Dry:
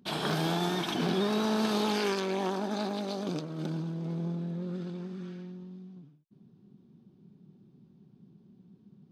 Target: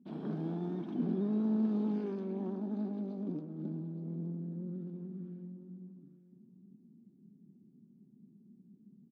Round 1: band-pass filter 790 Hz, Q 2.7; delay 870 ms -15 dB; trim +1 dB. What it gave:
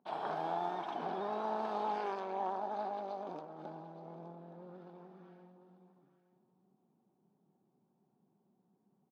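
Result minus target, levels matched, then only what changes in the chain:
1 kHz band +19.5 dB
change: band-pass filter 240 Hz, Q 2.7

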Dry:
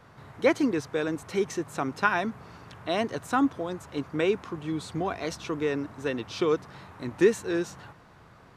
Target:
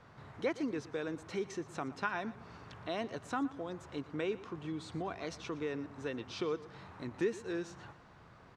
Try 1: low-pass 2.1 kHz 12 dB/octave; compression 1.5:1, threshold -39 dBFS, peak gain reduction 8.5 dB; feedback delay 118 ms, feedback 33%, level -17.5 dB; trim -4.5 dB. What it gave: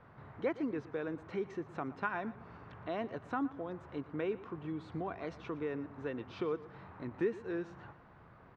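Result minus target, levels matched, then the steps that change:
8 kHz band -17.5 dB
change: low-pass 7 kHz 12 dB/octave

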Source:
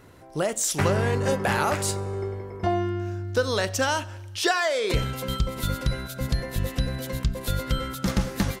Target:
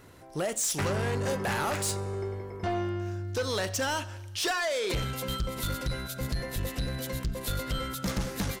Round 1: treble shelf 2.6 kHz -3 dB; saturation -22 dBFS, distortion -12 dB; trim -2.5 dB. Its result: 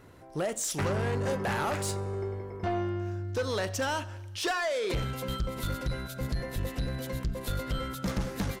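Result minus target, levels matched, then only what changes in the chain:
4 kHz band -3.0 dB
change: treble shelf 2.6 kHz +4 dB

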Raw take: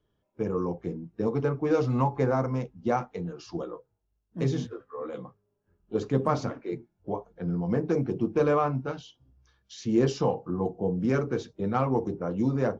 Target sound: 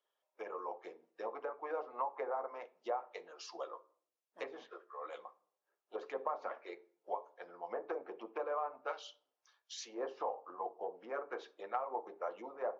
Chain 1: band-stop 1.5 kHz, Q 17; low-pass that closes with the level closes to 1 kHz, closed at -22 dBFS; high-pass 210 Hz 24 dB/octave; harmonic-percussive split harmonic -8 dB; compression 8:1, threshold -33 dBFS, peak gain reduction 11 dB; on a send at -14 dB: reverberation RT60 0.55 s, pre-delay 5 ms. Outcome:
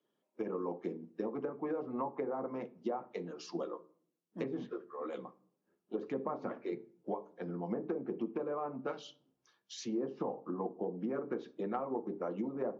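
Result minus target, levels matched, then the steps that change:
250 Hz band +13.0 dB
change: high-pass 580 Hz 24 dB/octave

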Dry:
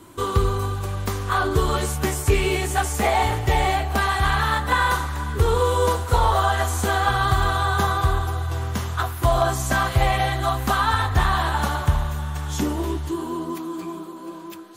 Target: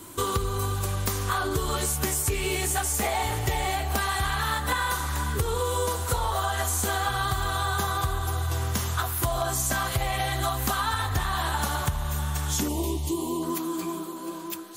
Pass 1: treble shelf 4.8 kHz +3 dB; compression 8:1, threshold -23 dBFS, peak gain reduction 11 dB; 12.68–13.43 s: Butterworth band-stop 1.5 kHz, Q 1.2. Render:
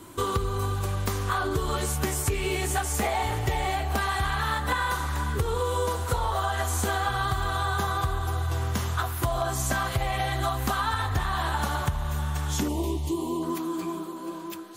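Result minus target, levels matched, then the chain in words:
8 kHz band -4.0 dB
treble shelf 4.8 kHz +12 dB; compression 8:1, threshold -23 dBFS, peak gain reduction 11 dB; 12.68–13.43 s: Butterworth band-stop 1.5 kHz, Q 1.2

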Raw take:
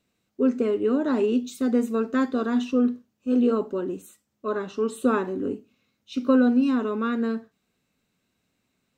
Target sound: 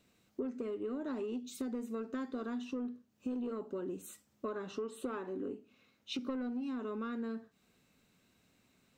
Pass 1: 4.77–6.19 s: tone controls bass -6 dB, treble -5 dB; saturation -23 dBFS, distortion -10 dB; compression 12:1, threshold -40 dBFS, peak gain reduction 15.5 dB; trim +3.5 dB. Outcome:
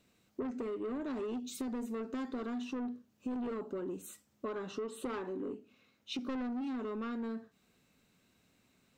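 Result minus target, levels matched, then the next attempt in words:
saturation: distortion +10 dB
4.77–6.19 s: tone controls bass -6 dB, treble -5 dB; saturation -14.5 dBFS, distortion -19 dB; compression 12:1, threshold -40 dBFS, peak gain reduction 21.5 dB; trim +3.5 dB

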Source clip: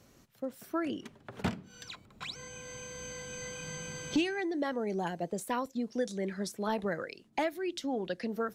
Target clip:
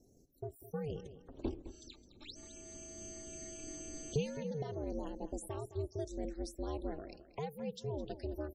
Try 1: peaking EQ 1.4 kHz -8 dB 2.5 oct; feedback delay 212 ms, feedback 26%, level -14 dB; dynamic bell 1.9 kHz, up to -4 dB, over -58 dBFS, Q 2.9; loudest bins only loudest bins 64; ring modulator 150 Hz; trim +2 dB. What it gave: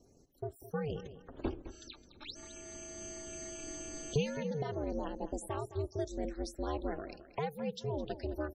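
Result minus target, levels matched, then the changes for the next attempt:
1 kHz band +3.0 dB
change: peaking EQ 1.4 kHz -18.5 dB 2.5 oct

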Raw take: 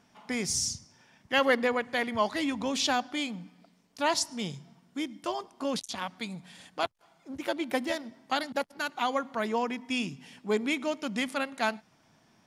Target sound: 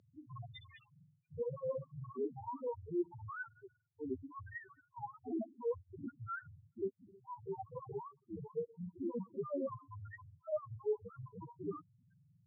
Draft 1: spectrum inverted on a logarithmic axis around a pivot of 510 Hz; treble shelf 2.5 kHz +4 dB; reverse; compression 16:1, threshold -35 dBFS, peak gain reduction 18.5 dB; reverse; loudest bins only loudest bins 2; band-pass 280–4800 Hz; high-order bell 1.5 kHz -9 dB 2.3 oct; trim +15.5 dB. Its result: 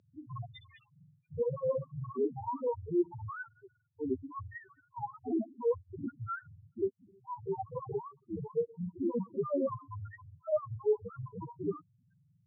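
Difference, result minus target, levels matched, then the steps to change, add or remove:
compression: peak gain reduction -7 dB
change: compression 16:1, threshold -42.5 dBFS, peak gain reduction 25.5 dB

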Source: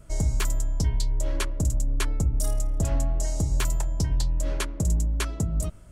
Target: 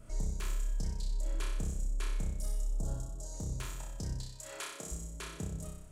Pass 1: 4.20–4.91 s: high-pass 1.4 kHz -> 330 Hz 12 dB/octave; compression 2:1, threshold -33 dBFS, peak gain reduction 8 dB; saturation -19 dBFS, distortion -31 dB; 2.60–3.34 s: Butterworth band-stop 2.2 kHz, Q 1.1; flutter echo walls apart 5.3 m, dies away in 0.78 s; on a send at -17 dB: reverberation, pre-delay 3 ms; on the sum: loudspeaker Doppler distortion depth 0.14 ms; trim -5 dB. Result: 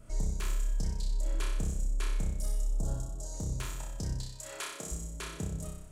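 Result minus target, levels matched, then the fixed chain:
compression: peak gain reduction -3.5 dB
4.20–4.91 s: high-pass 1.4 kHz -> 330 Hz 12 dB/octave; compression 2:1, threshold -39.5 dBFS, peak gain reduction 11 dB; saturation -19 dBFS, distortion -37 dB; 2.60–3.34 s: Butterworth band-stop 2.2 kHz, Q 1.1; flutter echo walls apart 5.3 m, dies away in 0.78 s; on a send at -17 dB: reverberation, pre-delay 3 ms; on the sum: loudspeaker Doppler distortion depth 0.14 ms; trim -5 dB

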